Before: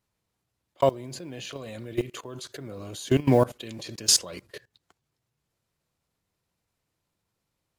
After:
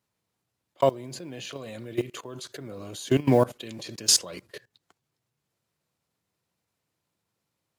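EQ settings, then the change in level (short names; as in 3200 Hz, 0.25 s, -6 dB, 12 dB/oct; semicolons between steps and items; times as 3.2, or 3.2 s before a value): HPF 100 Hz; 0.0 dB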